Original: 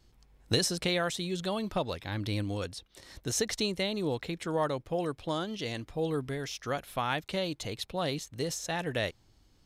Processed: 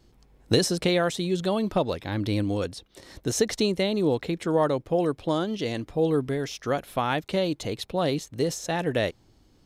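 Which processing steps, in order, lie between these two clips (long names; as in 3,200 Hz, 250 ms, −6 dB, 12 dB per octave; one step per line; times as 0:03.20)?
parametric band 330 Hz +7 dB 2.7 octaves
level +2 dB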